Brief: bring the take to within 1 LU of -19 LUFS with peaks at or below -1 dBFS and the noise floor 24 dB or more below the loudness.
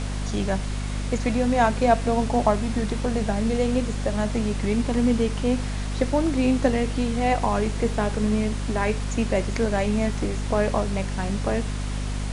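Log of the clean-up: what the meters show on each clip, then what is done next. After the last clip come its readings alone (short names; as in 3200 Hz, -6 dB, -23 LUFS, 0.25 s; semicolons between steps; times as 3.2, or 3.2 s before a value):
hum 50 Hz; harmonics up to 250 Hz; hum level -25 dBFS; noise floor -28 dBFS; noise floor target -49 dBFS; loudness -24.5 LUFS; peak -4.5 dBFS; loudness target -19.0 LUFS
-> de-hum 50 Hz, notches 5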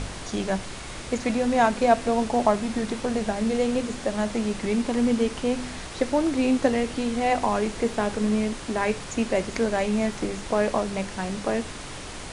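hum none; noise floor -37 dBFS; noise floor target -50 dBFS
-> noise print and reduce 13 dB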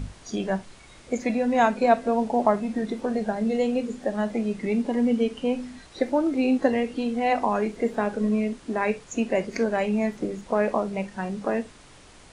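noise floor -50 dBFS; loudness -25.5 LUFS; peak -5.0 dBFS; loudness target -19.0 LUFS
-> gain +6.5 dB; limiter -1 dBFS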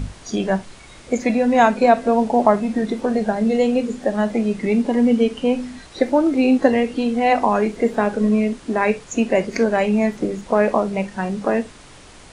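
loudness -19.0 LUFS; peak -1.0 dBFS; noise floor -43 dBFS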